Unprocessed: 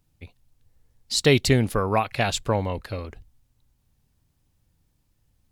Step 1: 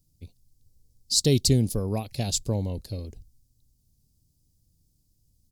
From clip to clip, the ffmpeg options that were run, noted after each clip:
ffmpeg -i in.wav -af "firequalizer=gain_entry='entry(180,0);entry(1300,-25);entry(4800,4)':delay=0.05:min_phase=1" out.wav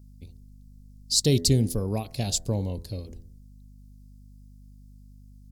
ffmpeg -i in.wav -af "bandreject=frequency=83.77:width_type=h:width=4,bandreject=frequency=167.54:width_type=h:width=4,bandreject=frequency=251.31:width_type=h:width=4,bandreject=frequency=335.08:width_type=h:width=4,bandreject=frequency=418.85:width_type=h:width=4,bandreject=frequency=502.62:width_type=h:width=4,bandreject=frequency=586.39:width_type=h:width=4,bandreject=frequency=670.16:width_type=h:width=4,bandreject=frequency=753.93:width_type=h:width=4,bandreject=frequency=837.7:width_type=h:width=4,bandreject=frequency=921.47:width_type=h:width=4,bandreject=frequency=1005.24:width_type=h:width=4,bandreject=frequency=1089.01:width_type=h:width=4,bandreject=frequency=1172.78:width_type=h:width=4,bandreject=frequency=1256.55:width_type=h:width=4,bandreject=frequency=1340.32:width_type=h:width=4,bandreject=frequency=1424.09:width_type=h:width=4,bandreject=frequency=1507.86:width_type=h:width=4,bandreject=frequency=1591.63:width_type=h:width=4,bandreject=frequency=1675.4:width_type=h:width=4,bandreject=frequency=1759.17:width_type=h:width=4,bandreject=frequency=1842.94:width_type=h:width=4,bandreject=frequency=1926.71:width_type=h:width=4,bandreject=frequency=2010.48:width_type=h:width=4,aeval=exprs='val(0)+0.00398*(sin(2*PI*50*n/s)+sin(2*PI*2*50*n/s)/2+sin(2*PI*3*50*n/s)/3+sin(2*PI*4*50*n/s)/4+sin(2*PI*5*50*n/s)/5)':channel_layout=same" out.wav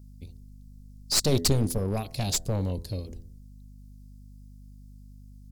ffmpeg -i in.wav -af "aeval=exprs='clip(val(0),-1,0.0422)':channel_layout=same,volume=1.5dB" out.wav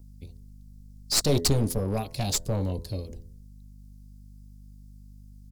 ffmpeg -i in.wav -filter_complex "[0:a]acrossover=split=300|1300|5700[link_01][link_02][link_03][link_04];[link_02]asplit=2[link_05][link_06];[link_06]adelay=14,volume=-3dB[link_07];[link_05][link_07]amix=inputs=2:normalize=0[link_08];[link_04]acrusher=bits=3:mode=log:mix=0:aa=0.000001[link_09];[link_01][link_08][link_03][link_09]amix=inputs=4:normalize=0" out.wav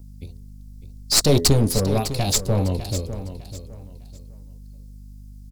ffmpeg -i in.wav -af "aecho=1:1:603|1206|1809:0.251|0.0703|0.0197,volume=6.5dB" out.wav

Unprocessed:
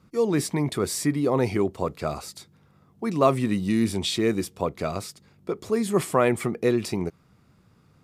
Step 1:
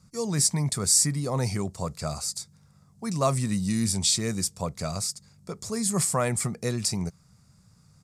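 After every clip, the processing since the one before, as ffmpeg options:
ffmpeg -i in.wav -af "firequalizer=gain_entry='entry(170,0);entry(320,-16);entry(570,-7);entry(1700,-6);entry(3100,-9);entry(4700,6);entry(7900,11);entry(14000,-3)':delay=0.05:min_phase=1,volume=2dB" out.wav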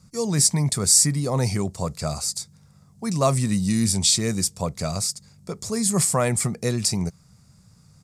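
ffmpeg -i in.wav -af "equalizer=frequency=1300:width=1.5:gain=-2.5,volume=4.5dB" out.wav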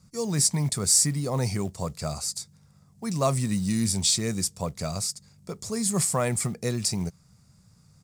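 ffmpeg -i in.wav -af "acrusher=bits=7:mode=log:mix=0:aa=0.000001,volume=-4dB" out.wav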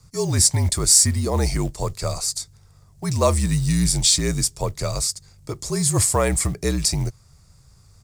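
ffmpeg -i in.wav -af "afreqshift=-51,volume=6dB" out.wav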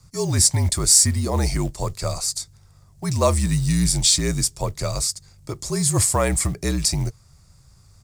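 ffmpeg -i in.wav -af "bandreject=frequency=450:width=12" out.wav

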